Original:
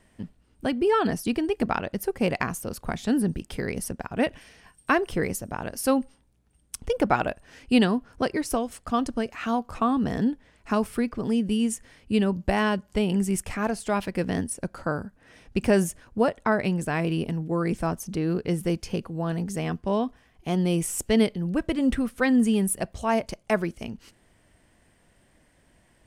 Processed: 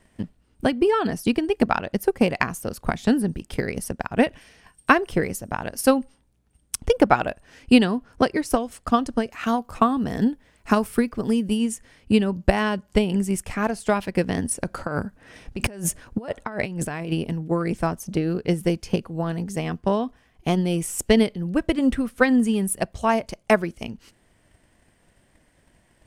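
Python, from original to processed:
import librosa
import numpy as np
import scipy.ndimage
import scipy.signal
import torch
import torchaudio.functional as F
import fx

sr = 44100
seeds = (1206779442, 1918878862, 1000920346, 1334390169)

y = fx.high_shelf(x, sr, hz=11000.0, db=11.0, at=(9.32, 11.59))
y = fx.over_compress(y, sr, threshold_db=-31.0, ratio=-1.0, at=(14.42, 17.12))
y = fx.transient(y, sr, attack_db=8, sustain_db=0)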